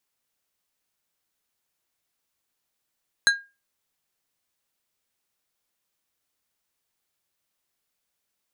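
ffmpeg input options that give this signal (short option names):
-f lavfi -i "aevalsrc='0.251*pow(10,-3*t/0.27)*sin(2*PI*1620*t)+0.158*pow(10,-3*t/0.142)*sin(2*PI*4050*t)+0.1*pow(10,-3*t/0.102)*sin(2*PI*6480*t)+0.0631*pow(10,-3*t/0.088)*sin(2*PI*8100*t)+0.0398*pow(10,-3*t/0.073)*sin(2*PI*10530*t)':d=0.89:s=44100"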